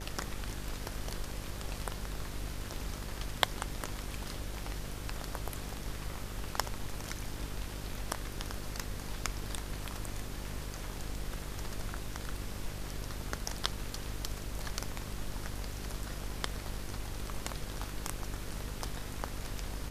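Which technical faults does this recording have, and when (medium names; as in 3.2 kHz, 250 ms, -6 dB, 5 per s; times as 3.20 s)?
buzz 50 Hz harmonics 12 -43 dBFS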